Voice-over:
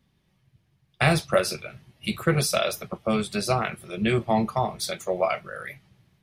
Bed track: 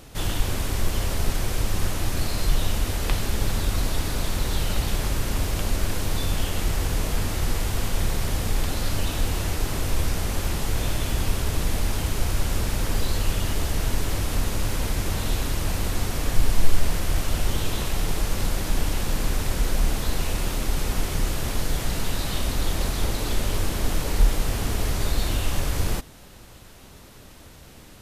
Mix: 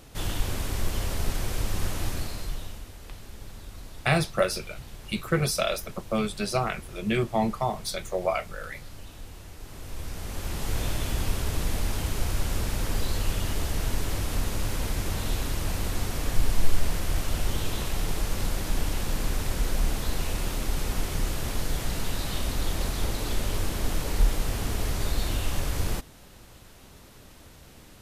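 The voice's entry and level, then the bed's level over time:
3.05 s, −2.5 dB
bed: 0:02.07 −4 dB
0:02.91 −18.5 dB
0:09.53 −18.5 dB
0:10.73 −3.5 dB

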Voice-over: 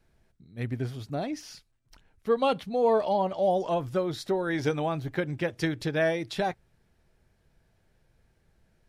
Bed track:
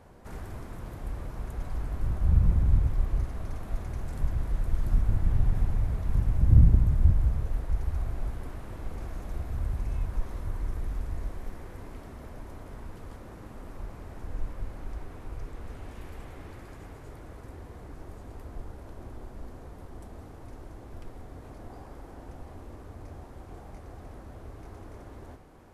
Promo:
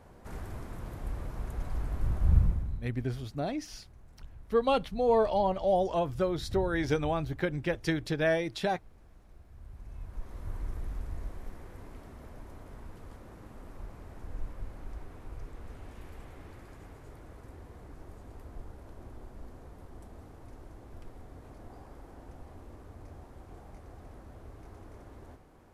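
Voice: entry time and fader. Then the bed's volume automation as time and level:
2.25 s, −1.5 dB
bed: 0:02.39 −1 dB
0:02.90 −20.5 dB
0:09.49 −20.5 dB
0:10.52 −4.5 dB

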